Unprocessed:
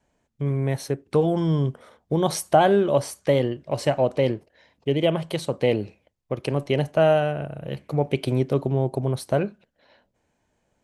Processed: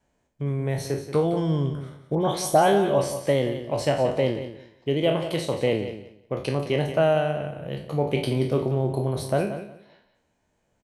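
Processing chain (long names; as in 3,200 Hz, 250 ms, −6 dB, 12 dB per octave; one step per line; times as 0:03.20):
peak hold with a decay on every bin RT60 0.43 s
0:02.15–0:03.01: all-pass dispersion highs, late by 69 ms, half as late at 2,200 Hz
on a send: repeating echo 179 ms, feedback 20%, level −11 dB
on the sum: level −2.5 dB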